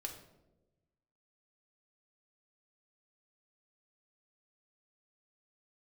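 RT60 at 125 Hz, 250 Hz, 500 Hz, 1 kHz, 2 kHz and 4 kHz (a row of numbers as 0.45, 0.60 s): 1.6, 1.4, 1.3, 0.85, 0.65, 0.55 s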